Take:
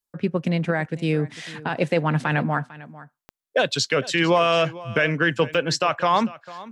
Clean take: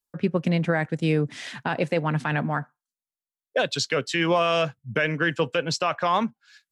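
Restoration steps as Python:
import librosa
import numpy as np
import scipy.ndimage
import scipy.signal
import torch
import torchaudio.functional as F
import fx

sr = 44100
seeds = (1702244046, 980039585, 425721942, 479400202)

y = fx.fix_declick_ar(x, sr, threshold=10.0)
y = fx.fix_echo_inverse(y, sr, delay_ms=449, level_db=-18.5)
y = fx.fix_level(y, sr, at_s=1.81, step_db=-3.0)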